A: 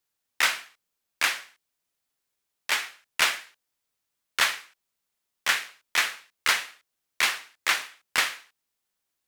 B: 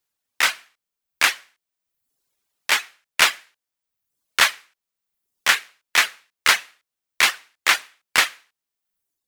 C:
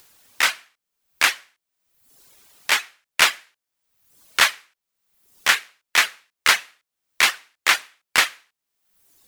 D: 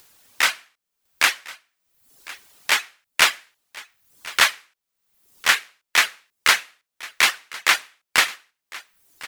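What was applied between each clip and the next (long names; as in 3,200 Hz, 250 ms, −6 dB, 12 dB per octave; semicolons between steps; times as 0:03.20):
automatic gain control gain up to 7 dB; reverb reduction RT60 0.85 s; level +1.5 dB
upward compression, threshold −34 dBFS
single-tap delay 1,054 ms −19.5 dB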